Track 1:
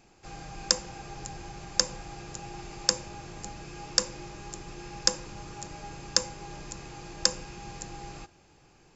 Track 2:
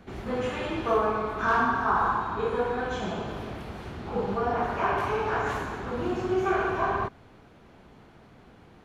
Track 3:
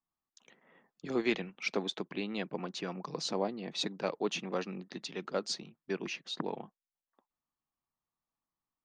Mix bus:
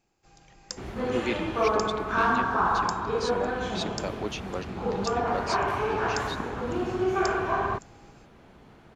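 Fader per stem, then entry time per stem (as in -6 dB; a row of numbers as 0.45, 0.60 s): -14.0, 0.0, 0.0 dB; 0.00, 0.70, 0.00 s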